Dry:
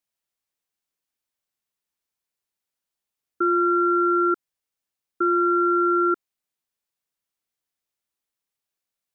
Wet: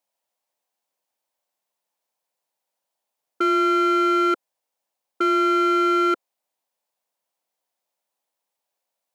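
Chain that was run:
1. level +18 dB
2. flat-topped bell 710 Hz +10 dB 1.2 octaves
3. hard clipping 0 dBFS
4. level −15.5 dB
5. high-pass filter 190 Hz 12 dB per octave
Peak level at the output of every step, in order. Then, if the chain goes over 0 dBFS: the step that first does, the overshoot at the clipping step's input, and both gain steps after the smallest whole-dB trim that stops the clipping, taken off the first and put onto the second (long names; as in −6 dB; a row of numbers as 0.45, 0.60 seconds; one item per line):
+4.5, +4.5, 0.0, −15.5, −12.5 dBFS
step 1, 4.5 dB
step 1 +13 dB, step 4 −10.5 dB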